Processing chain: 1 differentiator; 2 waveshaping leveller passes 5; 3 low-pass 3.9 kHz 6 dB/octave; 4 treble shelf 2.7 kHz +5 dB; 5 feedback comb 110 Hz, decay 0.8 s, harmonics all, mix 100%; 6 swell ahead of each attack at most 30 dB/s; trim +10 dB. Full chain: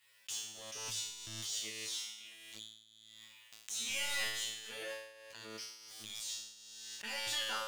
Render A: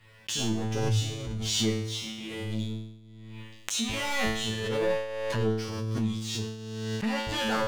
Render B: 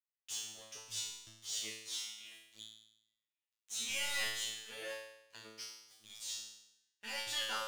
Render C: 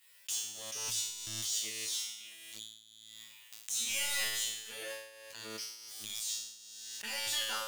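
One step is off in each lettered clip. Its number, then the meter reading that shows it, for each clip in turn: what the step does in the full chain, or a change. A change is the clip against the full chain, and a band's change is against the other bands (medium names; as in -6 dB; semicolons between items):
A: 1, 125 Hz band +19.5 dB; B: 6, 125 Hz band -5.0 dB; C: 3, 8 kHz band +5.0 dB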